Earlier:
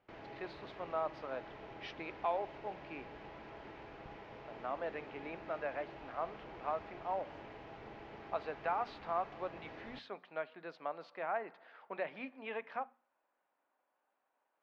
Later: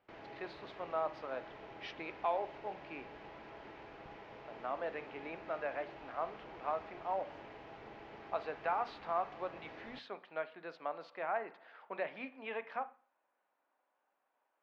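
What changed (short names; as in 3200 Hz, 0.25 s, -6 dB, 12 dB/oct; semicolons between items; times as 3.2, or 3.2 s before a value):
speech: send +8.5 dB; master: add low shelf 200 Hz -5 dB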